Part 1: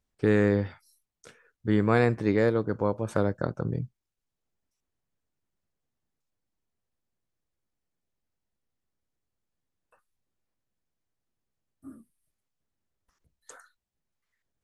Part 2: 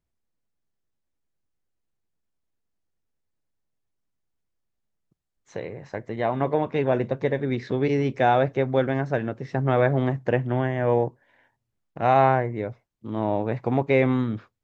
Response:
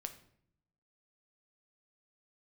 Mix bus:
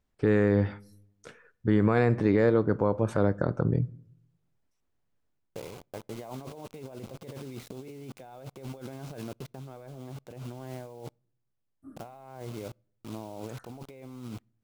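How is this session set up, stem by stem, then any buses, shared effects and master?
+3.0 dB, 0.00 s, send -9.5 dB, treble shelf 3.9 kHz -9 dB; auto duck -11 dB, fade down 0.25 s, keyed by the second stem
-13.5 dB, 0.00 s, send -21 dB, word length cut 6-bit, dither none; compressor with a negative ratio -29 dBFS, ratio -1; peaking EQ 1.8 kHz -11.5 dB 0.34 oct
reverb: on, RT60 0.65 s, pre-delay 7 ms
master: peak limiter -12.5 dBFS, peak gain reduction 8.5 dB

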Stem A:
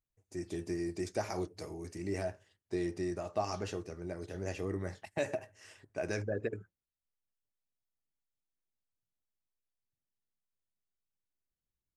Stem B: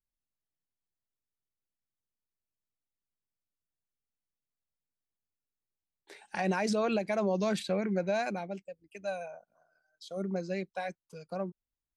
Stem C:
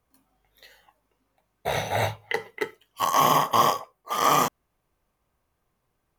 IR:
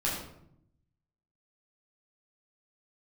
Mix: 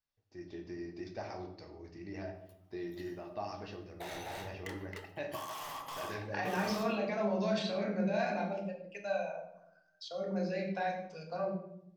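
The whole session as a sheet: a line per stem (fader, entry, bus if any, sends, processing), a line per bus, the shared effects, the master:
-9.0 dB, 0.00 s, no bus, send -8 dB, steep low-pass 5.3 kHz 48 dB/octave
+0.5 dB, 0.00 s, bus A, send -7.5 dB, elliptic band-pass 130–5500 Hz; peak limiter -26 dBFS, peak gain reduction 6.5 dB
-7.5 dB, 2.35 s, bus A, send -18 dB, overload inside the chain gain 28.5 dB
bus A: 0.0 dB, high-pass 370 Hz; compression, threshold -43 dBFS, peak gain reduction 13 dB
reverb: on, RT60 0.70 s, pre-delay 9 ms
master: bass shelf 340 Hz -4.5 dB

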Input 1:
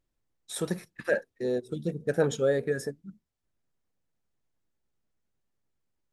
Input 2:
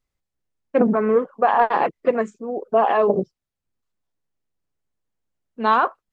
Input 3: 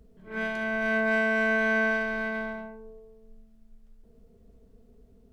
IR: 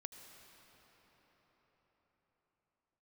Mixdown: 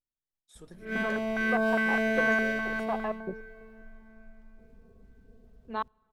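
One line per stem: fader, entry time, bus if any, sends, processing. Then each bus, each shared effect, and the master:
-19.5 dB, 0.00 s, no send, vibrato 1.2 Hz 59 cents
-14.0 dB, 0.10 s, send -24 dB, trance gate "...x..x.x..xxx." 194 bpm -60 dB
-1.5 dB, 0.55 s, send -5 dB, median filter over 5 samples; step-sequenced notch 4.9 Hz 350–2000 Hz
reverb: on, pre-delay 71 ms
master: none

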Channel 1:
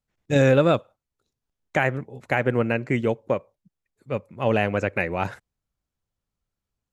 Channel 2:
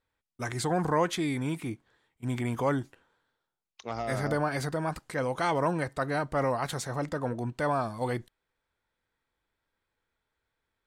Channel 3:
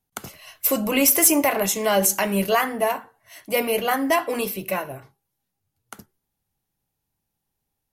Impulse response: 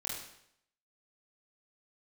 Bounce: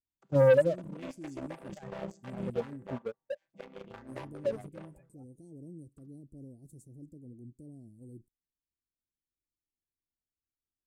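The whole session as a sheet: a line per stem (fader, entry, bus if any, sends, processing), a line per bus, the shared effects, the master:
+0.5 dB, 0.00 s, bus A, no send, spectral contrast expander 4:1
-12.5 dB, 0.00 s, no bus, no send, elliptic band-stop 320–8200 Hz, stop band 60 dB; tone controls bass -2 dB, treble -6 dB
-20.0 dB, 0.05 s, bus A, no send, vocoder on a held chord major triad, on C3; feedback comb 230 Hz, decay 0.8 s, mix 30%
bus A: 0.0 dB, waveshaping leveller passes 2; compression 1.5:1, threshold -37 dBFS, peak gain reduction 10.5 dB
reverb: none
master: none

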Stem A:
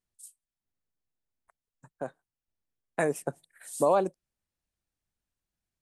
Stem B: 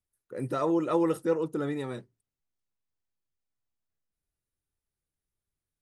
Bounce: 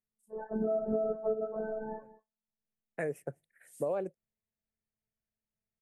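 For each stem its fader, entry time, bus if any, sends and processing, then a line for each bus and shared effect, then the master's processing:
-9.5 dB, 0.00 s, no send, no echo send, graphic EQ 125/250/500/1000/2000/4000/8000 Hz +7/-3/+7/-11/+9/-12/-6 dB; auto duck -22 dB, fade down 0.50 s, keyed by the second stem
+1.5 dB, 0.00 s, no send, echo send -17 dB, spectrum inverted on a logarithmic axis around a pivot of 460 Hz; low-pass 1.1 kHz 24 dB/octave; robot voice 218 Hz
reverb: none
echo: delay 191 ms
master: short-mantissa float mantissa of 8-bit; compression 4:1, threshold -28 dBFS, peak gain reduction 7.5 dB

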